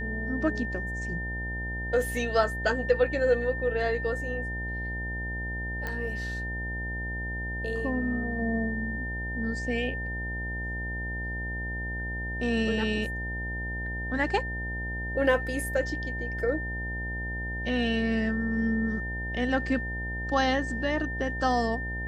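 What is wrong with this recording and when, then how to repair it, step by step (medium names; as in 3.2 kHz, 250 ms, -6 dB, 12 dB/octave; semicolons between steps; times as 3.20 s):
buzz 60 Hz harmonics 16 -35 dBFS
whine 1.8 kHz -34 dBFS
5.87 s: pop -19 dBFS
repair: de-click; de-hum 60 Hz, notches 16; band-stop 1.8 kHz, Q 30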